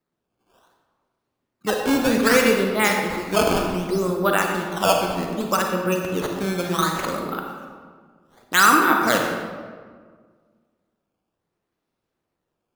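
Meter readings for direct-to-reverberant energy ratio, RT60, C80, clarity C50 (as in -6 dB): 1.5 dB, 1.7 s, 4.5 dB, 2.5 dB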